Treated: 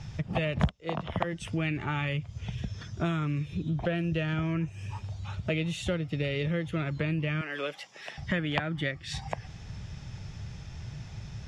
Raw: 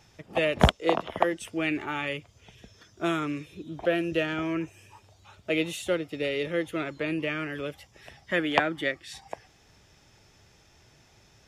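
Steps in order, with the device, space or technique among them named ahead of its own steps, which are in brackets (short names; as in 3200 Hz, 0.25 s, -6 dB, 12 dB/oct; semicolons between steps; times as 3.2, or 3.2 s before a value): 7.41–8.18 Bessel high-pass 460 Hz, order 4; jukebox (LPF 6400 Hz 12 dB/oct; resonant low shelf 220 Hz +12 dB, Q 1.5; compressor 4:1, threshold -37 dBFS, peak gain reduction 28.5 dB); gain +8 dB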